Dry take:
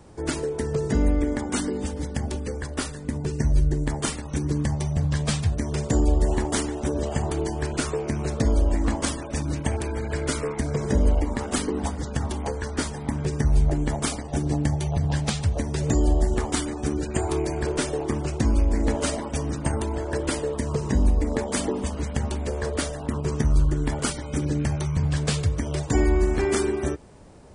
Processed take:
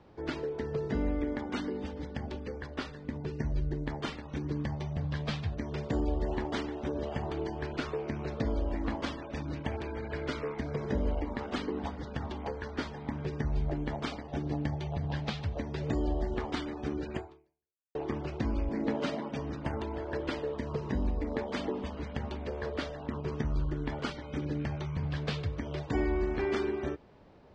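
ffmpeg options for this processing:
-filter_complex "[0:a]asettb=1/sr,asplit=3[s0][s1][s2];[s0]atrim=end=18.694[s3];[s1]atrim=start=18.69:end=19.39,asetpts=PTS-STARTPTS,afade=t=in:d=0.004:c=qsin,afade=t=out:st=0.696:d=0.004:c=qsin,highpass=f=160:t=q:w=1.9[s4];[s2]atrim=start=19.386[s5];[s3][s4]acrossfade=d=0.004:c1=hsin:c2=qsin[s6];[s6][s5]acrossfade=d=0.004:c1=qsin:c2=hsin,asplit=2[s7][s8];[s7]atrim=end=17.95,asetpts=PTS-STARTPTS,afade=t=out:st=17.15:d=0.8:c=exp[s9];[s8]atrim=start=17.95,asetpts=PTS-STARTPTS,afade=t=in:d=0.004:c=hsin[s10];[s9][s10]concat=n=2:v=0:a=1,lowpass=f=4200:w=0.5412,lowpass=f=4200:w=1.3066,lowshelf=f=140:g=-6.5,volume=0.473"

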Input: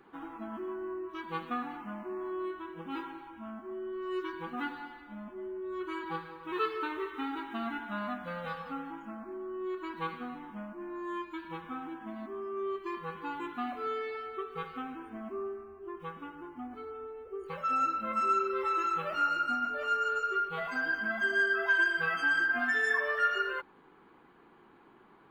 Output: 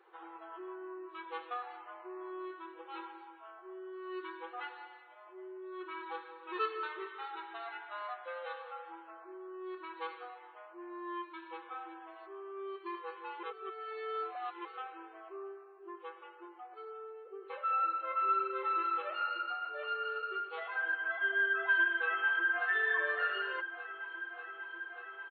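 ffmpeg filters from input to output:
-filter_complex "[0:a]asplit=2[s0][s1];[s1]afade=t=in:st=21.52:d=0.01,afade=t=out:st=22.68:d=0.01,aecho=0:1:590|1180|1770|2360|2950|3540|4130|4720|5310|5900|6490|7080:0.298538|0.253758|0.215694|0.18334|0.155839|0.132463|0.112594|0.0957045|0.0813488|0.0691465|0.0587745|0.0499584[s2];[s0][s2]amix=inputs=2:normalize=0,asplit=3[s3][s4][s5];[s3]atrim=end=13.432[s6];[s4]atrim=start=13.428:end=14.652,asetpts=PTS-STARTPTS,areverse[s7];[s5]atrim=start=14.648[s8];[s6][s7]acrossfade=d=0.004:c1=hsin:c2=hsin[s9];[s9][s8]acrossfade=d=0.004:c1=hsin:c2=hsin,afftfilt=real='re*between(b*sr/4096,330,4500)':imag='im*between(b*sr/4096,330,4500)':win_size=4096:overlap=0.75,aecho=1:1:3.9:0.35,volume=0.631"

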